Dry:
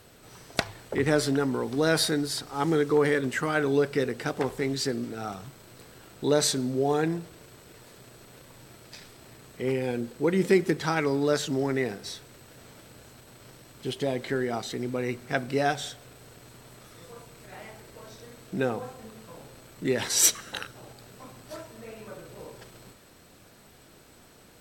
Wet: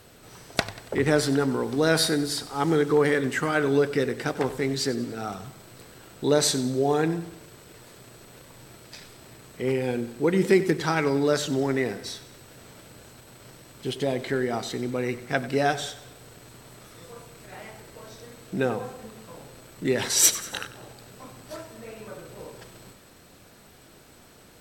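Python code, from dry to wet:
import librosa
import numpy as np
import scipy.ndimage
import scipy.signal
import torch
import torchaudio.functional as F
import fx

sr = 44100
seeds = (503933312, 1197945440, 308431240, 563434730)

y = fx.echo_feedback(x, sr, ms=94, feedback_pct=49, wet_db=-15.5)
y = F.gain(torch.from_numpy(y), 2.0).numpy()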